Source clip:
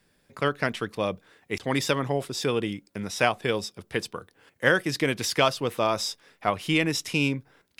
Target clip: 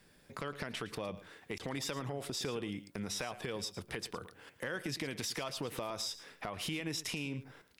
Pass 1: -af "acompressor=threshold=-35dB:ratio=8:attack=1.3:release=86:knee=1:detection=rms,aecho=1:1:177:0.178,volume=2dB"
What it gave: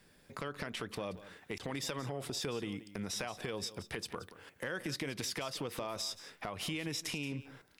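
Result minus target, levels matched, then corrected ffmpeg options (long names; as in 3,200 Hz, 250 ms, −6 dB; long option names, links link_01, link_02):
echo 65 ms late
-af "acompressor=threshold=-35dB:ratio=8:attack=1.3:release=86:knee=1:detection=rms,aecho=1:1:112:0.178,volume=2dB"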